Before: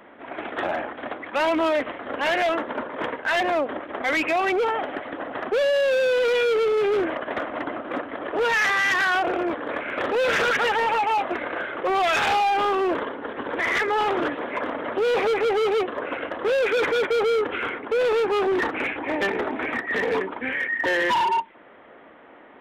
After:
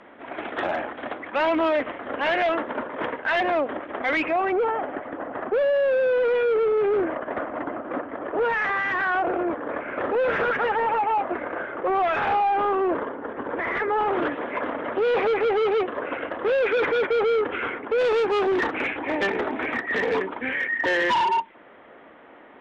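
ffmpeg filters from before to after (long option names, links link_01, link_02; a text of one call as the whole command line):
ffmpeg -i in.wav -af "asetnsamples=nb_out_samples=441:pad=0,asendcmd='1.2 lowpass f 3200;4.28 lowpass f 1600;14.13 lowpass f 2900;17.98 lowpass f 6900',lowpass=7200" out.wav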